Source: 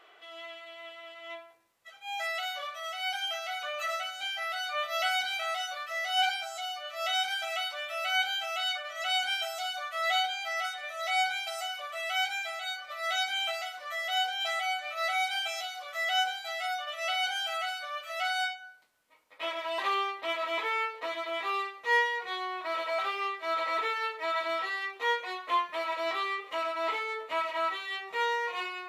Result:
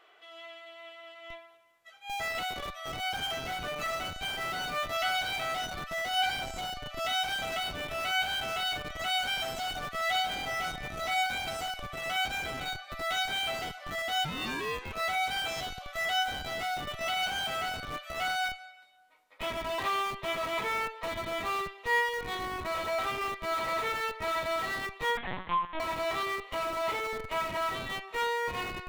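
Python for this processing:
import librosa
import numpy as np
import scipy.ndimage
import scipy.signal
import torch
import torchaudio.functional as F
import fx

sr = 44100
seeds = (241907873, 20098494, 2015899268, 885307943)

p1 = fx.bessel_highpass(x, sr, hz=170.0, order=2, at=(2.27, 3.3))
p2 = fx.ring_mod(p1, sr, carrier_hz=fx.line((14.24, 630.0), (14.92, 210.0)), at=(14.24, 14.92), fade=0.02)
p3 = p2 + fx.echo_feedback(p2, sr, ms=219, feedback_pct=38, wet_db=-23.5, dry=0)
p4 = fx.rev_freeverb(p3, sr, rt60_s=1.4, hf_ratio=0.7, predelay_ms=95, drr_db=15.5)
p5 = fx.schmitt(p4, sr, flips_db=-32.5)
p6 = p4 + (p5 * 10.0 ** (-5.0 / 20.0))
p7 = fx.lpc_vocoder(p6, sr, seeds[0], excitation='pitch_kept', order=8, at=(25.17, 25.8))
y = p7 * 10.0 ** (-3.0 / 20.0)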